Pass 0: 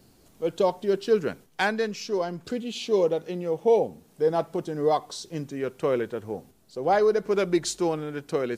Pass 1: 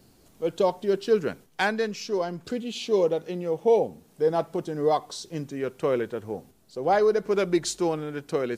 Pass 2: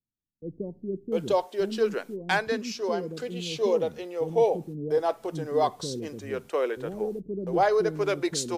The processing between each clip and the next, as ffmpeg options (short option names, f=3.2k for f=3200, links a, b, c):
-af anull
-filter_complex "[0:a]agate=range=-36dB:threshold=-44dB:ratio=16:detection=peak,acrossover=split=330[a][b];[b]adelay=700[c];[a][c]amix=inputs=2:normalize=0"